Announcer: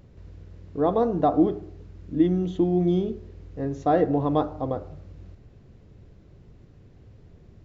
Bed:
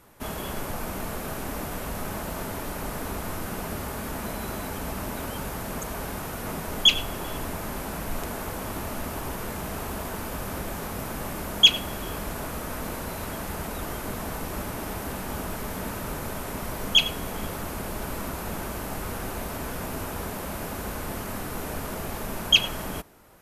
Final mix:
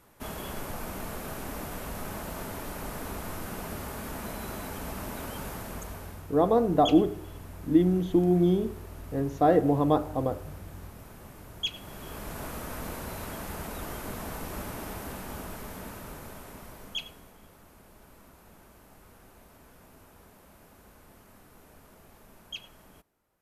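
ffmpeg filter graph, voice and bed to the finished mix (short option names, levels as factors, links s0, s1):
-filter_complex "[0:a]adelay=5550,volume=0.944[s0];[1:a]volume=2.37,afade=t=out:st=5.5:d=0.76:silence=0.251189,afade=t=in:st=11.7:d=0.77:silence=0.251189,afade=t=out:st=14.71:d=2.66:silence=0.133352[s1];[s0][s1]amix=inputs=2:normalize=0"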